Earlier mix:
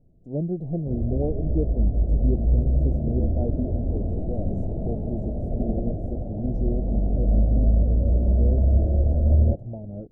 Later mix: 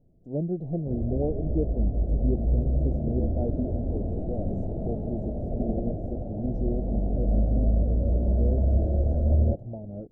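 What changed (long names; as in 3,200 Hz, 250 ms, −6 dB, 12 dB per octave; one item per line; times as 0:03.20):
speech: add high-frequency loss of the air 53 metres
master: add low-shelf EQ 170 Hz −4.5 dB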